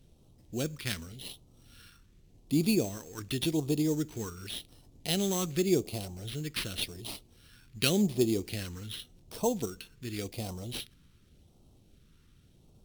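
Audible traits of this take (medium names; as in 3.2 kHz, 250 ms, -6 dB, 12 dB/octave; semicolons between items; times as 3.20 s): aliases and images of a low sample rate 7 kHz, jitter 0%; phasing stages 2, 0.88 Hz, lowest notch 680–1600 Hz; Vorbis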